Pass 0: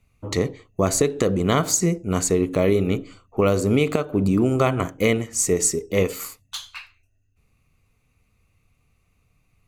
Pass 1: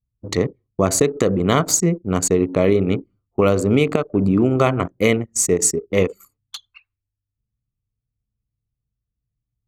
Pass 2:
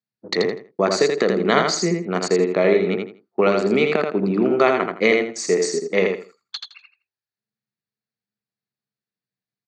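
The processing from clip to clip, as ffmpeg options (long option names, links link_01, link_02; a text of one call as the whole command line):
ffmpeg -i in.wav -af "highpass=79,anlmdn=158,volume=3dB" out.wav
ffmpeg -i in.wav -af "highpass=frequency=220:width=0.5412,highpass=frequency=220:width=1.3066,equalizer=frequency=280:width_type=q:width=4:gain=-10,equalizer=frequency=520:width_type=q:width=4:gain=-4,equalizer=frequency=1100:width_type=q:width=4:gain=-5,equalizer=frequency=1700:width_type=q:width=4:gain=6,equalizer=frequency=3100:width_type=q:width=4:gain=-6,equalizer=frequency=4400:width_type=q:width=4:gain=6,lowpass=frequency=4900:width=0.5412,lowpass=frequency=4900:width=1.3066,aecho=1:1:82|164|246:0.596|0.131|0.0288,volume=2dB" out.wav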